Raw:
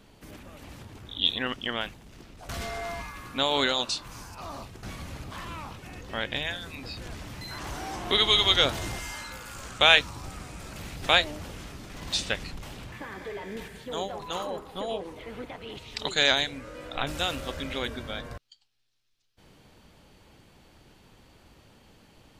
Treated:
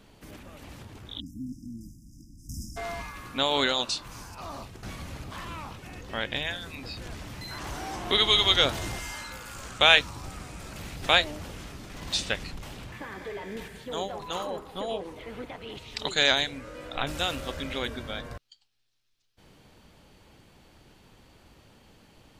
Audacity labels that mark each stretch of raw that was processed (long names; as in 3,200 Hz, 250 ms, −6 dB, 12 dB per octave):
1.200000	2.770000	time-frequency box erased 340–4,900 Hz